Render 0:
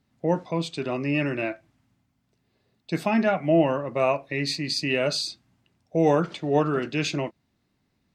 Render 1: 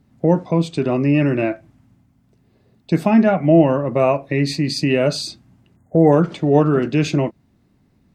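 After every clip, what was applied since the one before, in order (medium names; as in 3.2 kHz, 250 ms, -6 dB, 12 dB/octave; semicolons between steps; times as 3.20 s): spectral selection erased 5.76–6.13 s, 2.1–6.4 kHz; FFT filter 210 Hz 0 dB, 4.1 kHz -12 dB, 9.5 kHz -8 dB; in parallel at 0 dB: compression, threshold -33 dBFS, peak gain reduction 15 dB; on the sum: trim +8.5 dB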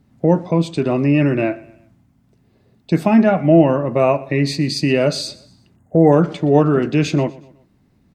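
feedback delay 122 ms, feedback 43%, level -21 dB; trim +1 dB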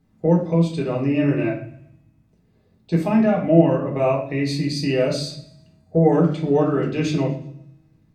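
feedback comb 160 Hz, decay 1.7 s, mix 30%; reverberation RT60 0.45 s, pre-delay 5 ms, DRR -1.5 dB; trim -6.5 dB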